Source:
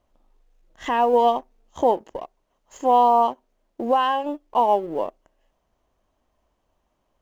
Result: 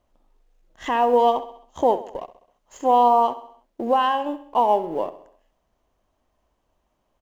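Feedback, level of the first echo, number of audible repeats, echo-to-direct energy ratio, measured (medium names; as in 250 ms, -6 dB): 53%, -15.0 dB, 4, -13.5 dB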